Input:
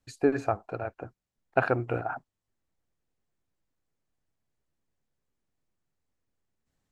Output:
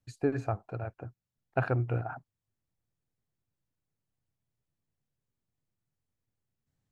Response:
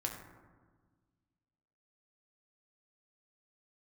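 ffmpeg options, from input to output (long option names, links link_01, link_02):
-af "equalizer=frequency=120:width=1.2:gain=11.5,volume=-6.5dB"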